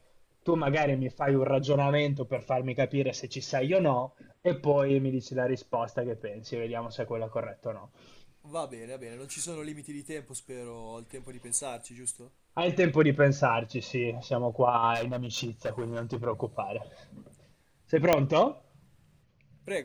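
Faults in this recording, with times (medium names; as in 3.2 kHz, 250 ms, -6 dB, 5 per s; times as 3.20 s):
14.94–16.25 s: clipped -27.5 dBFS
18.13 s: pop -7 dBFS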